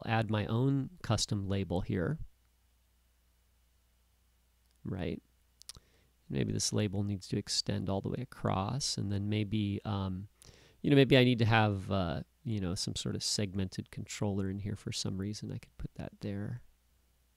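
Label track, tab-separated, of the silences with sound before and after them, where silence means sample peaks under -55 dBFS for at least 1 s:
2.300000	4.660000	silence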